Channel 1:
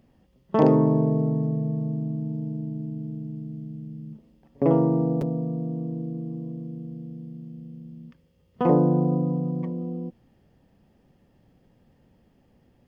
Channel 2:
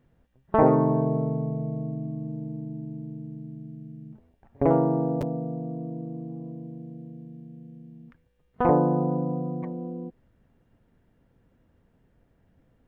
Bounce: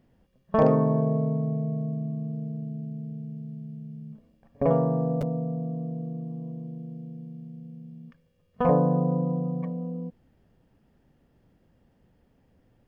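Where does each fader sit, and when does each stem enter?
−5.5, −3.0 decibels; 0.00, 0.00 seconds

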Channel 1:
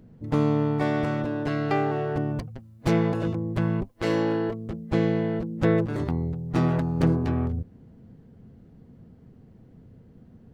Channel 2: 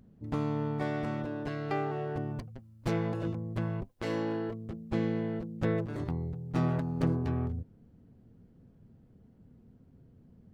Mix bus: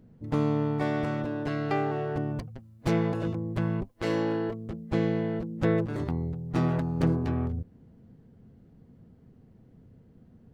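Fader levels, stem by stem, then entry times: −4.5, −14.0 decibels; 0.00, 0.00 seconds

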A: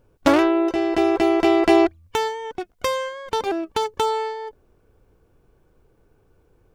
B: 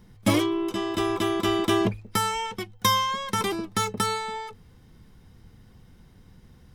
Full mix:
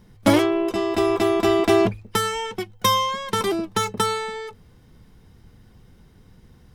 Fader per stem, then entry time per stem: −4.0, +1.0 decibels; 0.00, 0.00 seconds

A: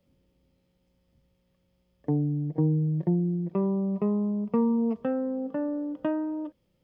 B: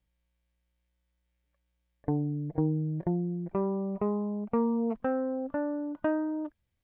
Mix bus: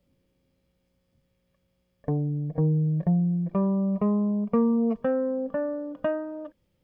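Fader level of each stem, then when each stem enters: −1.5, +1.0 decibels; 0.00, 0.00 seconds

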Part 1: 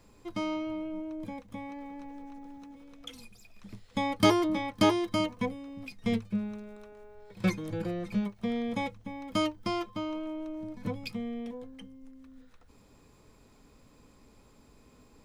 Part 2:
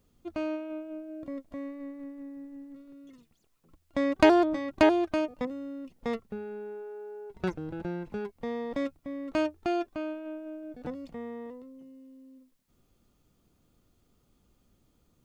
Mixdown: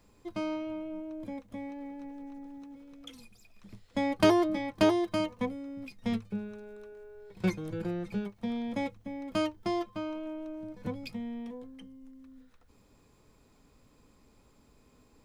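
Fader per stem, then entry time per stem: −4.0, −6.5 decibels; 0.00, 0.00 seconds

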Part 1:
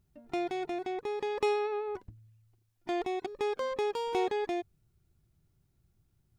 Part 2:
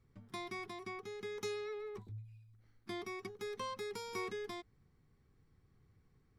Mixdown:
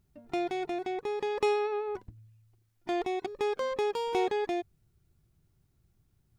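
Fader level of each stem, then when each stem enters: +1.5, −14.0 decibels; 0.00, 0.00 seconds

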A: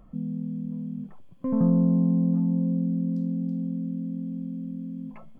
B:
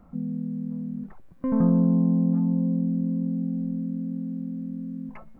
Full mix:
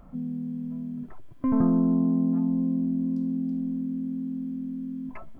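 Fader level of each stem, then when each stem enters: −0.5, +1.0 decibels; 0.00, 0.00 seconds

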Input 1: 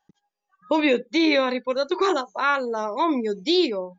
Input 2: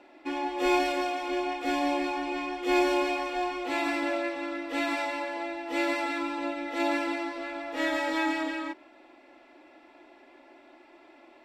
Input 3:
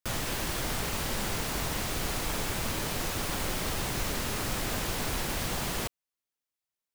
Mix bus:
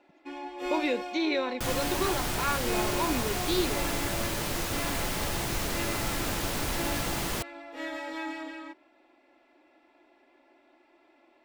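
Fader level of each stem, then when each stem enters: −9.0, −8.0, +0.5 decibels; 0.00, 0.00, 1.55 seconds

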